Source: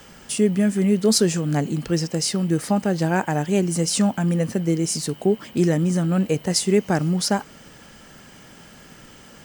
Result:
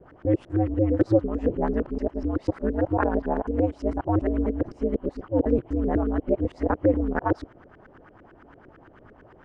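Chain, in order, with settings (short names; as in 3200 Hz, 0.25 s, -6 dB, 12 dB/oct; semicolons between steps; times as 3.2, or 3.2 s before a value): local time reversal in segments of 0.248 s; ring modulator 110 Hz; LFO low-pass saw up 8.9 Hz 370–1700 Hz; gain -2.5 dB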